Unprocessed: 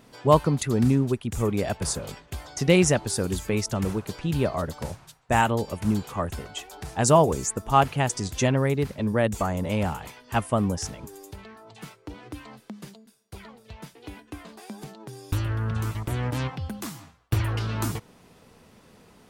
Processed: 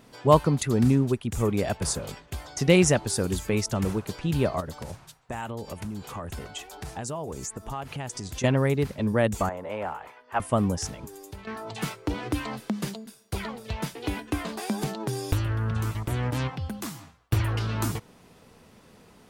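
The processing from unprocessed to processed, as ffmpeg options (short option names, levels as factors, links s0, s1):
-filter_complex "[0:a]asettb=1/sr,asplit=3[s0][s1][s2];[s0]atrim=end=4.604[s3];[s1]atrim=start=4.6:end=8.44,asetpts=PTS-STARTPTS,afade=t=in:d=0.004:c=qsin,afade=t=out:st=3.836:d=0.004:c=qsin,acompressor=threshold=0.0282:ratio=6:attack=3.2:release=140:knee=1:detection=peak[s4];[s2]atrim=start=8.436[s5];[s3][s4]acrossfade=d=0.004:c1=hsin:c2=qsin[s6];[s6][s5]acrossfade=d=0.004:c1=qsin:c2=hsin,asettb=1/sr,asplit=3[s7][s8][s9];[s7]atrim=end=9.494[s10];[s8]atrim=start=9.49:end=10.4,asetpts=PTS-STARTPTS,afade=t=in:d=0.004:c=qsin,afade=t=out:st=0.906:d=0.004:c=qsin,acrossover=split=400 2200:gain=0.126 1 0.141[s11][s12][s13];[s11][s12][s13]amix=inputs=3:normalize=0[s14];[s9]atrim=start=10.396[s15];[s10][s14]acrossfade=d=0.004:c1=hsin:c2=qsin[s16];[s16][s15]acrossfade=d=0.004:c1=qsin:c2=hsin,asettb=1/sr,asplit=3[s17][s18][s19];[s17]atrim=end=11.474[s20];[s18]atrim=start=11.47:end=15.33,asetpts=PTS-STARTPTS,afade=t=in:d=0.004:c=qsin,afade=t=out:st=3.856:d=0.004:c=qsin,aeval=exprs='0.188*sin(PI/2*2.24*val(0)/0.188)':c=same[s21];[s19]atrim=start=15.326[s22];[s20][s21]acrossfade=d=0.004:c1=hsin:c2=qsin[s23];[s23][s22]acrossfade=d=0.004:c1=qsin:c2=hsin"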